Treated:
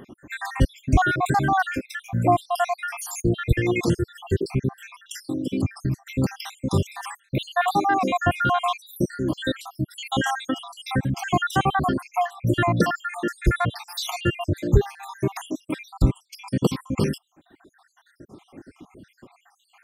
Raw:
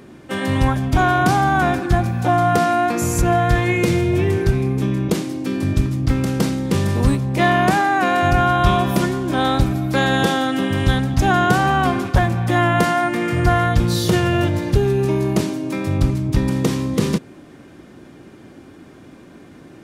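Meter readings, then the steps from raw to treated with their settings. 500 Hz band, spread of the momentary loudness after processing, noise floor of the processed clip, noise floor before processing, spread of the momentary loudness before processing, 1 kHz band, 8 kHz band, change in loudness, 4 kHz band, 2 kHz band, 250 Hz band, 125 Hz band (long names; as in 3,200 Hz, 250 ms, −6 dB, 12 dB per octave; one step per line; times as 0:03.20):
−7.0 dB, 10 LU, −65 dBFS, −43 dBFS, 5 LU, −6.0 dB, −6.5 dB, −6.5 dB, −6.0 dB, −6.5 dB, −7.0 dB, −7.0 dB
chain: time-frequency cells dropped at random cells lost 71%
reverb reduction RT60 1.6 s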